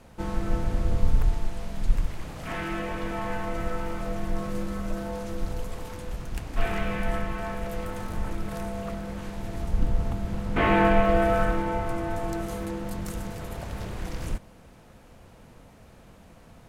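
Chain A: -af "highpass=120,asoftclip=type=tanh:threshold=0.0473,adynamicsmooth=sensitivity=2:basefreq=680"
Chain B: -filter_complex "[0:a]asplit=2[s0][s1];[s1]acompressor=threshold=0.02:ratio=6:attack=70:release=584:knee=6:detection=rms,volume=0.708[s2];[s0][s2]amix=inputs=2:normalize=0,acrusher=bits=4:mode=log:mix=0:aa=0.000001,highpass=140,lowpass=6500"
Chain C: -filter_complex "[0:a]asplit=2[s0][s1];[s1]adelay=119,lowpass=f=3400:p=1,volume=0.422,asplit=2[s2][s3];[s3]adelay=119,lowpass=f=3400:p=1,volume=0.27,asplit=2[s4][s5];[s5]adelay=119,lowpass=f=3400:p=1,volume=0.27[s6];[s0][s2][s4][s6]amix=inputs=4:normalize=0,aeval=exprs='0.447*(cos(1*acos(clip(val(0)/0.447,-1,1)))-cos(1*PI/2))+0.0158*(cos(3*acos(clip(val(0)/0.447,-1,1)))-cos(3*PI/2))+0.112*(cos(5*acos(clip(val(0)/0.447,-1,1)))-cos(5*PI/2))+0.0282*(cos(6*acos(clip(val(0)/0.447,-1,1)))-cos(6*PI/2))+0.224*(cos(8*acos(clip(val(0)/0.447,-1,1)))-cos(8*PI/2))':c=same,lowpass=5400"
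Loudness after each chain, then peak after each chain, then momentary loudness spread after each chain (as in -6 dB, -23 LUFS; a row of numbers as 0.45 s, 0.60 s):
-36.5 LUFS, -29.5 LUFS, -21.5 LUFS; -26.5 dBFS, -7.0 dBFS, -1.5 dBFS; 12 LU, 15 LU, 13 LU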